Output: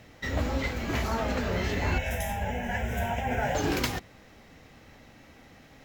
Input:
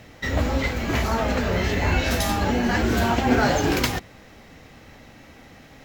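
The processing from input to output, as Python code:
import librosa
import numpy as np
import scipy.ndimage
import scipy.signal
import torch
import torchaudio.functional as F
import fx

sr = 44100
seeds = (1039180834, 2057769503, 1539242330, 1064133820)

y = fx.fixed_phaser(x, sr, hz=1200.0, stages=6, at=(1.98, 3.55))
y = F.gain(torch.from_numpy(y), -6.0).numpy()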